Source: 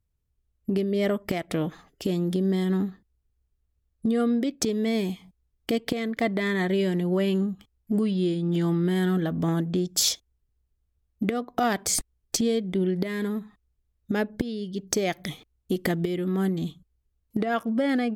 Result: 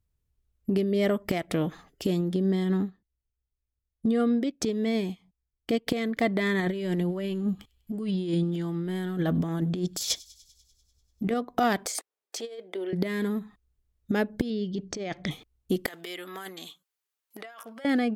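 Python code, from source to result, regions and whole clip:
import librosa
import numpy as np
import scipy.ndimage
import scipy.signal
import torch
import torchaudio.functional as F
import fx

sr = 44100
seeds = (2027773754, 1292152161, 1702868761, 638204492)

y = fx.chain(x, sr, fx.high_shelf(hz=8600.0, db=-8.0),
    fx.upward_expand(threshold_db=-45.0, expansion=1.5), at=(2.21, 5.87))
y = fx.chain(y, sr, fx.over_compress(threshold_db=-27.0, ratio=-0.5),
    fx.echo_wet_highpass(ms=98, feedback_pct=68, hz=3800.0, wet_db=-20.5), at=(6.6, 11.34))
y = fx.chain(y, sr, fx.highpass(hz=450.0, slope=24),
    fx.high_shelf(hz=2800.0, db=-7.5),
    fx.over_compress(threshold_db=-33.0, ratio=-0.5), at=(11.86, 12.93))
y = fx.chain(y, sr, fx.lowpass(hz=6800.0, slope=24),
    fx.over_compress(threshold_db=-30.0, ratio=-1.0),
    fx.high_shelf(hz=4300.0, db=-6.5), at=(14.5, 15.31))
y = fx.chain(y, sr, fx.highpass(hz=930.0, slope=12),
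    fx.high_shelf(hz=10000.0, db=3.0),
    fx.over_compress(threshold_db=-41.0, ratio=-1.0), at=(15.86, 17.85))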